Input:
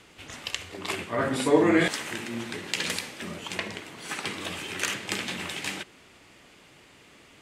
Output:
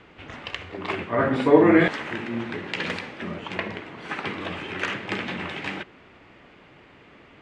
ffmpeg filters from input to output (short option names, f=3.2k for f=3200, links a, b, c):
-af "lowpass=2.2k,volume=5dB"